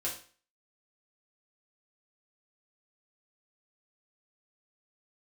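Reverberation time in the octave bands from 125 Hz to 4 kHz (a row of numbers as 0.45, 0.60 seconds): 0.40, 0.45, 0.45, 0.40, 0.40, 0.40 seconds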